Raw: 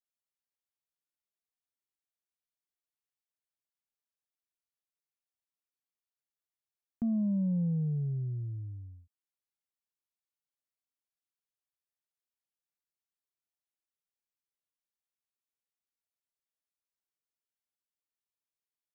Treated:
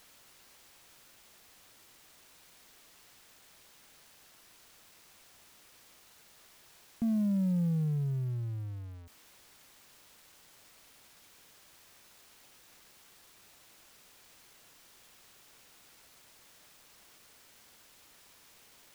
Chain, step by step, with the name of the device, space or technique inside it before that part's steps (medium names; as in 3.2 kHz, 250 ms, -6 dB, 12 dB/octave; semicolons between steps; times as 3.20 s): early CD player with a faulty converter (jump at every zero crossing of -47.5 dBFS; sampling jitter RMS 0.021 ms)